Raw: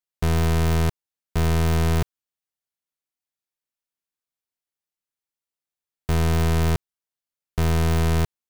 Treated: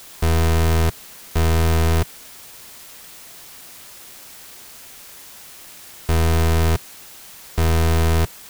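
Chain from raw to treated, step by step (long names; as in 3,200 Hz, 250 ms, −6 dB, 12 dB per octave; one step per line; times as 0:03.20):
parametric band 150 Hz −7.5 dB 0.39 octaves
in parallel at −5 dB: bit-depth reduction 6 bits, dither triangular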